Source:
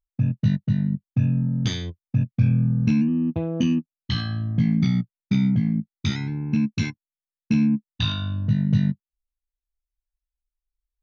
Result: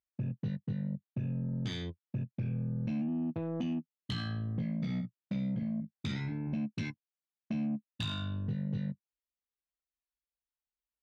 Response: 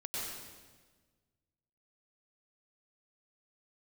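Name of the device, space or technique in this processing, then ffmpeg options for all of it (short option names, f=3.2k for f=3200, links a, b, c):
AM radio: -filter_complex "[0:a]asettb=1/sr,asplit=3[a][b][c];[a]atrim=end=4.784[d];[b]atrim=start=4.78:end=6.47,asetpts=PTS-STARTPTS,afade=t=in:d=0.004:c=qsin,afade=t=out:st=1.686:d=0.004:c=qsin,asplit=2[e][f];[f]adelay=45,volume=-7dB[g];[e][g]amix=inputs=2:normalize=0,atrim=end_sample=74529[h];[c]atrim=start=6.466[i];[d][h]acrossfade=d=0.004:c1=hsin:c2=qsin[j];[j][i]acrossfade=d=0.004:c1=qsin:c2=hsin,highpass=110,lowpass=4.3k,acompressor=threshold=-26dB:ratio=4,asoftclip=type=tanh:threshold=-24dB,volume=-4dB"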